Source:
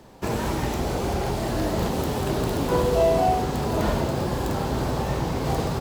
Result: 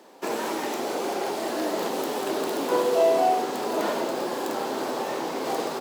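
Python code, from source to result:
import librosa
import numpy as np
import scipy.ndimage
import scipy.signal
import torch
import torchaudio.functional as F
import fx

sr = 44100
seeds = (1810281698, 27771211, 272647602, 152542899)

y = scipy.signal.sosfilt(scipy.signal.butter(4, 280.0, 'highpass', fs=sr, output='sos'), x)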